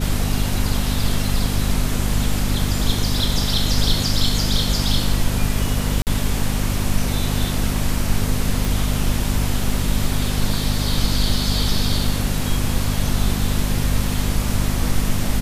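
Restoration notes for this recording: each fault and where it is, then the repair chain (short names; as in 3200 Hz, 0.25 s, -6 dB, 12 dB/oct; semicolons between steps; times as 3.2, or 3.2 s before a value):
hum 50 Hz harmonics 5 -23 dBFS
6.02–6.07 gap 48 ms
8.65 pop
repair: de-click; de-hum 50 Hz, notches 5; interpolate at 6.02, 48 ms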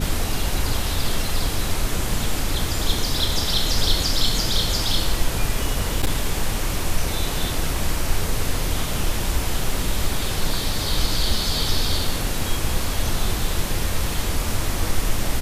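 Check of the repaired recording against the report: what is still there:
8.65 pop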